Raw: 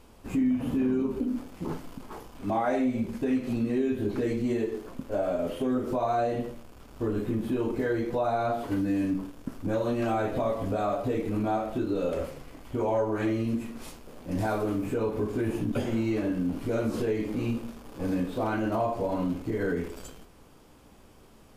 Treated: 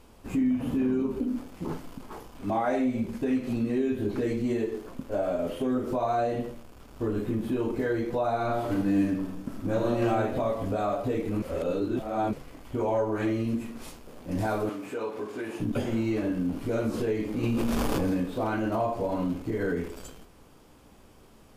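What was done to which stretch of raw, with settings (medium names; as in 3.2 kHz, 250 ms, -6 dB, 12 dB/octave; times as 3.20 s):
8.31–10.09 s: reverb throw, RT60 0.94 s, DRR 2.5 dB
11.42–12.33 s: reverse
14.69–15.60 s: frequency weighting A
17.43–18.17 s: level flattener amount 100%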